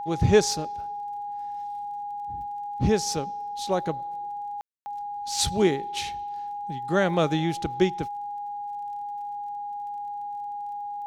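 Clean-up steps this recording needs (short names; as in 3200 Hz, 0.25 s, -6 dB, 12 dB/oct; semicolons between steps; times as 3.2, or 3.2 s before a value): de-click; notch 820 Hz, Q 30; room tone fill 4.61–4.86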